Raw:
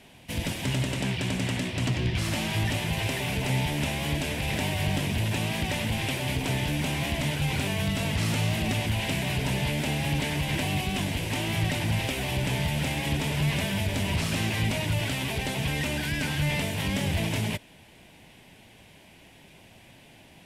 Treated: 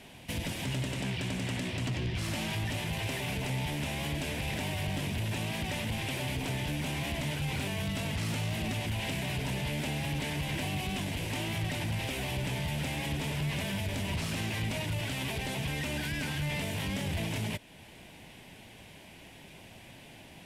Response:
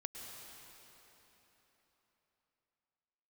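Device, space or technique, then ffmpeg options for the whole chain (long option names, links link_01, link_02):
soft clipper into limiter: -af "asoftclip=type=tanh:threshold=-19.5dB,alimiter=level_in=4dB:limit=-24dB:level=0:latency=1:release=289,volume=-4dB,volume=1.5dB"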